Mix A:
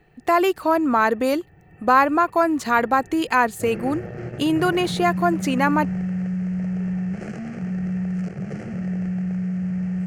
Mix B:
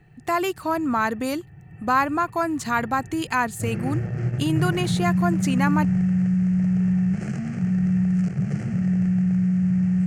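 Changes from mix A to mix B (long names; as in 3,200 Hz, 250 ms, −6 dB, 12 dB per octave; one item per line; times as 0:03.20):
speech −3.5 dB
master: add graphic EQ with 10 bands 125 Hz +11 dB, 500 Hz −6 dB, 8,000 Hz +6 dB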